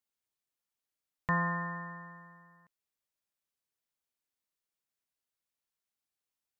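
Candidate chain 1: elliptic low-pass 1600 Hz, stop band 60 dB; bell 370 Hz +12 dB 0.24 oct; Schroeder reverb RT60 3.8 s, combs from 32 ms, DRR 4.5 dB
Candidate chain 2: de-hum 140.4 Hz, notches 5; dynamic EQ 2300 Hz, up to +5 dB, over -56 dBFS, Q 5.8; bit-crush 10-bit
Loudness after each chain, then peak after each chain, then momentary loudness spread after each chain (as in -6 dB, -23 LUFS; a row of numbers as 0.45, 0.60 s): -34.5, -34.5 LUFS; -20.0, -18.0 dBFS; 20, 19 LU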